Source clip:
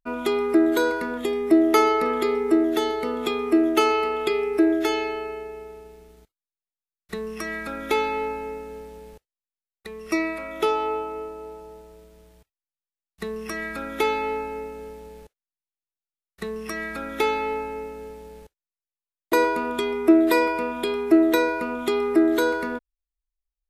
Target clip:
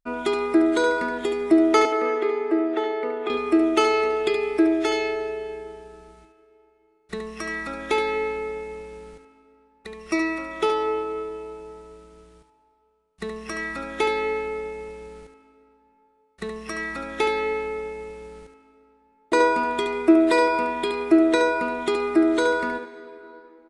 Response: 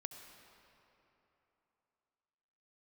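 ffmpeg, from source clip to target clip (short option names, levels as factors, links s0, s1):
-filter_complex "[0:a]asettb=1/sr,asplit=3[s0][s1][s2];[s0]atrim=end=1.854[s3];[s1]atrim=start=1.85:end=3.3,asetpts=PTS-STARTPTS,afade=t=in:d=0.004:c=qsin,afade=t=out:st=1.446:d=0.004:c=qsin,acrossover=split=280 2700:gain=0.126 1 0.0794[s4][s5][s6];[s4][s5][s6]amix=inputs=3:normalize=0[s7];[s2]atrim=start=3.296[s8];[s3][s7]acrossfade=d=0.004:c1=hsin:c2=qsin[s9];[s9][s8]acrossfade=d=0.004:c1=qsin:c2=hsin,asplit=2[s10][s11];[1:a]atrim=start_sample=2205,lowshelf=f=170:g=-10.5,adelay=72[s12];[s11][s12]afir=irnorm=-1:irlink=0,volume=0.75[s13];[s10][s13]amix=inputs=2:normalize=0,aresample=22050,aresample=44100"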